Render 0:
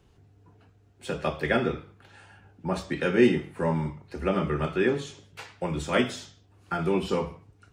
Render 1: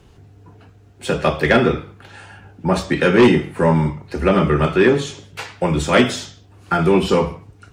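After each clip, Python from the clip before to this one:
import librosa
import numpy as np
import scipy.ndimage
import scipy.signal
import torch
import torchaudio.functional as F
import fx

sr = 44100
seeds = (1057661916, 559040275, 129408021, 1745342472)

y = fx.fold_sine(x, sr, drive_db=5, ceiling_db=-8.5)
y = y * librosa.db_to_amplitude(3.0)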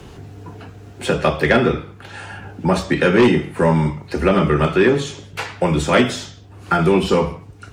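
y = fx.band_squash(x, sr, depth_pct=40)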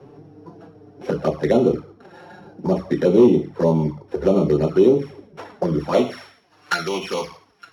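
y = np.r_[np.sort(x[:len(x) // 8 * 8].reshape(-1, 8), axis=1).ravel(), x[len(x) // 8 * 8:]]
y = fx.env_flanger(y, sr, rest_ms=8.4, full_db=-11.5)
y = fx.filter_sweep_bandpass(y, sr, from_hz=400.0, to_hz=1800.0, start_s=5.72, end_s=6.44, q=0.78)
y = y * librosa.db_to_amplitude(2.0)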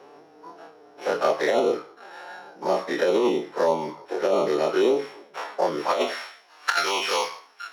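y = fx.spec_dilate(x, sr, span_ms=60)
y = scipy.signal.sosfilt(scipy.signal.butter(2, 700.0, 'highpass', fs=sr, output='sos'), y)
y = fx.over_compress(y, sr, threshold_db=-20.0, ratio=-0.5)
y = y * librosa.db_to_amplitude(1.0)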